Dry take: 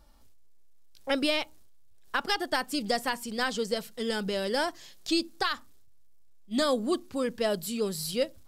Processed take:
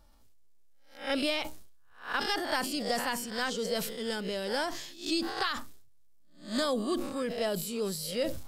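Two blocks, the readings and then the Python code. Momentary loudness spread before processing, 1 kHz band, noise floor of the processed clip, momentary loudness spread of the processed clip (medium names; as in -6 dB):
6 LU, -2.0 dB, -55 dBFS, 6 LU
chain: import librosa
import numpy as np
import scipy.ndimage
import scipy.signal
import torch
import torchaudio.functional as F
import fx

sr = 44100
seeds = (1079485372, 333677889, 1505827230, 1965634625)

y = fx.spec_swells(x, sr, rise_s=0.37)
y = fx.sustainer(y, sr, db_per_s=58.0)
y = y * librosa.db_to_amplitude(-4.5)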